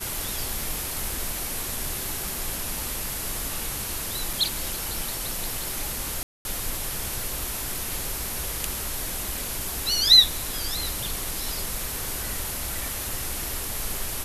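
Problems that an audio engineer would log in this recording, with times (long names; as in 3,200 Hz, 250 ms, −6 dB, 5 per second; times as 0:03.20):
0:04.33: drop-out 3.1 ms
0:06.23–0:06.45: drop-out 221 ms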